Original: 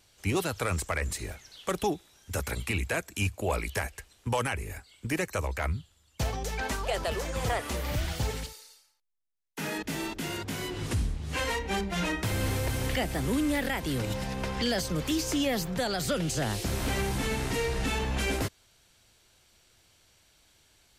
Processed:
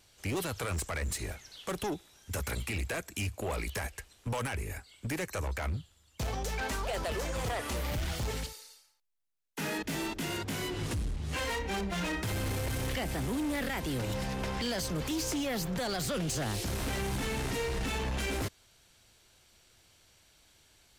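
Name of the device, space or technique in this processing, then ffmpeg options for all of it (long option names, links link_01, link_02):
limiter into clipper: -af "alimiter=limit=-23.5dB:level=0:latency=1:release=22,asoftclip=type=hard:threshold=-29.5dB"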